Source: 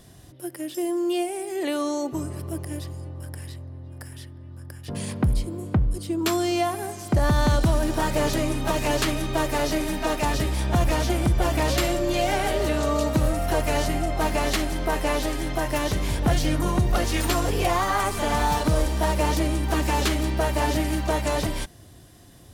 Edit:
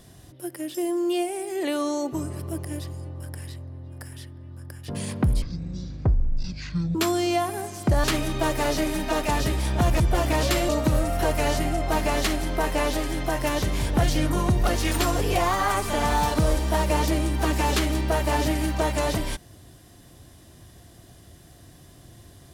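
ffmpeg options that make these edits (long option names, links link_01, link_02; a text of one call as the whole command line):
ffmpeg -i in.wav -filter_complex "[0:a]asplit=6[link_01][link_02][link_03][link_04][link_05][link_06];[link_01]atrim=end=5.424[link_07];[link_02]atrim=start=5.42:end=6.2,asetpts=PTS-STARTPTS,asetrate=22491,aresample=44100,atrim=end_sample=67447,asetpts=PTS-STARTPTS[link_08];[link_03]atrim=start=6.196:end=7.292[link_09];[link_04]atrim=start=8.978:end=10.942[link_10];[link_05]atrim=start=11.268:end=11.962[link_11];[link_06]atrim=start=12.978[link_12];[link_07][link_08]acrossfade=duration=0.004:curve1=hsin:curve2=hsin[link_13];[link_13][link_09]acrossfade=duration=0.004:curve1=hsin:curve2=hsin[link_14];[link_14][link_10]acrossfade=duration=0.004:curve1=hsin:curve2=hsin[link_15];[link_15][link_11]acrossfade=duration=0.004:curve1=hsin:curve2=hsin[link_16];[link_16][link_12]acrossfade=duration=0.004:curve1=hsin:curve2=hsin" out.wav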